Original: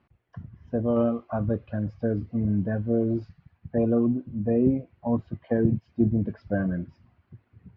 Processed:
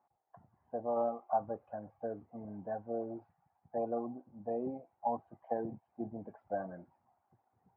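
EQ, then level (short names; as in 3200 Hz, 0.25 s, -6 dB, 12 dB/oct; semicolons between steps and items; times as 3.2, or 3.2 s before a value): band-pass 800 Hz, Q 7.9; air absorption 310 m; +8.5 dB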